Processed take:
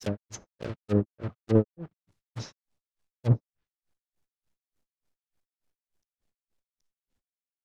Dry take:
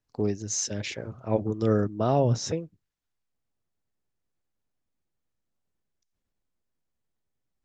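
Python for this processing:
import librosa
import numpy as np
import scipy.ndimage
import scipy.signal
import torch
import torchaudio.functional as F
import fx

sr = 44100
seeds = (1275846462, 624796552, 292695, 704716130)

y = fx.block_float(x, sr, bits=3)
y = fx.granulator(y, sr, seeds[0], grain_ms=177.0, per_s=3.4, spray_ms=990.0, spread_st=0)
y = fx.env_lowpass_down(y, sr, base_hz=500.0, full_db=-29.0)
y = F.gain(torch.from_numpy(y), 5.0).numpy()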